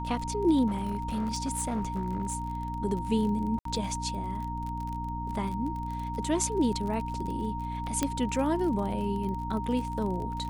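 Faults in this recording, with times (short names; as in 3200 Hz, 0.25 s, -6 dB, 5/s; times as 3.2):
crackle 37/s -35 dBFS
hum 60 Hz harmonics 5 -36 dBFS
tone 930 Hz -35 dBFS
0.67–2.35 clipped -25.5 dBFS
3.59–3.65 gap 63 ms
8.03 pop -12 dBFS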